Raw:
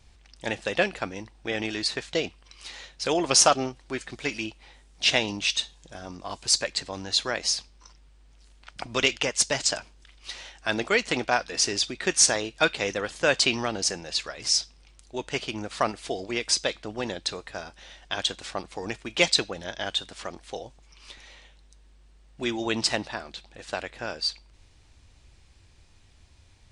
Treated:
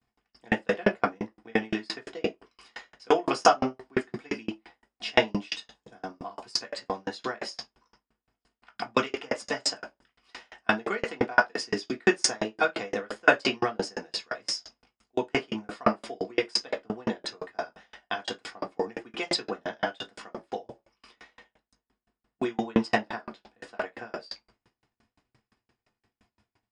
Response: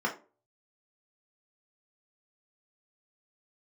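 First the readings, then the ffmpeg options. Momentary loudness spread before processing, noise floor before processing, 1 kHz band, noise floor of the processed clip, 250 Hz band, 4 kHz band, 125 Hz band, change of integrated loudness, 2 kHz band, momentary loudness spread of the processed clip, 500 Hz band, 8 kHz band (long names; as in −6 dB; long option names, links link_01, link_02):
18 LU, −56 dBFS, +2.0 dB, below −85 dBFS, +1.5 dB, −8.0 dB, −2.5 dB, −3.5 dB, −1.0 dB, 17 LU, 0.0 dB, −13.0 dB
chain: -filter_complex "[0:a]agate=range=-33dB:threshold=-48dB:ratio=3:detection=peak[link_01];[1:a]atrim=start_sample=2205,afade=type=out:start_time=0.28:duration=0.01,atrim=end_sample=12789,asetrate=41895,aresample=44100[link_02];[link_01][link_02]afir=irnorm=-1:irlink=0,aeval=exprs='val(0)*pow(10,-37*if(lt(mod(5.8*n/s,1),2*abs(5.8)/1000),1-mod(5.8*n/s,1)/(2*abs(5.8)/1000),(mod(5.8*n/s,1)-2*abs(5.8)/1000)/(1-2*abs(5.8)/1000))/20)':channel_layout=same"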